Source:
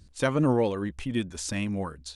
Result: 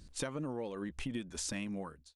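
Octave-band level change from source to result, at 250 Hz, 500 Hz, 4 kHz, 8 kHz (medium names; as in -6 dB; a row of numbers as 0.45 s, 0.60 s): -11.5 dB, -13.5 dB, -6.5 dB, -3.5 dB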